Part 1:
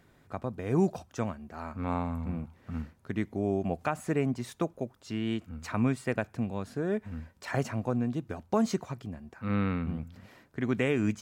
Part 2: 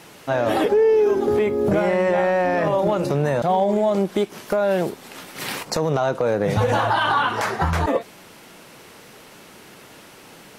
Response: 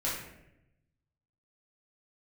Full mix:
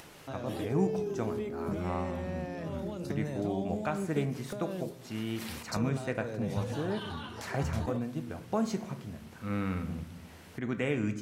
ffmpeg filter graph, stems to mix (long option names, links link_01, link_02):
-filter_complex "[0:a]volume=-5dB,asplit=2[link_01][link_02];[link_02]volume=-12.5dB[link_03];[1:a]acrossover=split=380|3000[link_04][link_05][link_06];[link_05]acompressor=threshold=-33dB:ratio=6[link_07];[link_04][link_07][link_06]amix=inputs=3:normalize=0,volume=-12.5dB[link_08];[2:a]atrim=start_sample=2205[link_09];[link_03][link_09]afir=irnorm=-1:irlink=0[link_10];[link_01][link_08][link_10]amix=inputs=3:normalize=0,acompressor=mode=upward:threshold=-45dB:ratio=2.5"